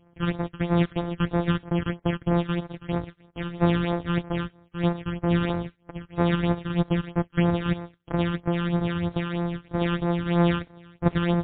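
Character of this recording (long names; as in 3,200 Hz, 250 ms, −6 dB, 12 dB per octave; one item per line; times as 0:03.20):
a buzz of ramps at a fixed pitch in blocks of 256 samples
phaser sweep stages 12, 3.1 Hz, lowest notch 660–3,100 Hz
MP3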